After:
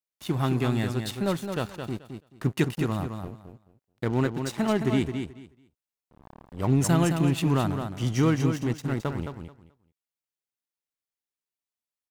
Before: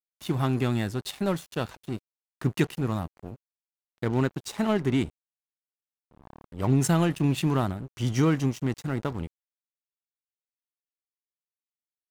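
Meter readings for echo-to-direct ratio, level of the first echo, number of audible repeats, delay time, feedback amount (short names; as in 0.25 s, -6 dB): -7.0 dB, -7.0 dB, 2, 0.216 s, 19%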